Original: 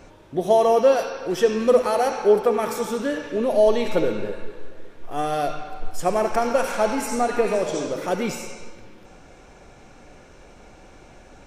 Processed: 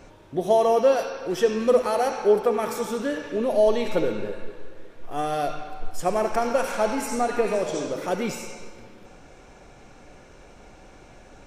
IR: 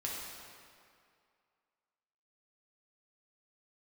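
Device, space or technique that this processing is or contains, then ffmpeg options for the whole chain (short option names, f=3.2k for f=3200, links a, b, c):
compressed reverb return: -filter_complex "[0:a]asplit=2[a][b];[1:a]atrim=start_sample=2205[c];[b][c]afir=irnorm=-1:irlink=0,acompressor=threshold=-29dB:ratio=6,volume=-13dB[d];[a][d]amix=inputs=2:normalize=0,volume=-2.5dB"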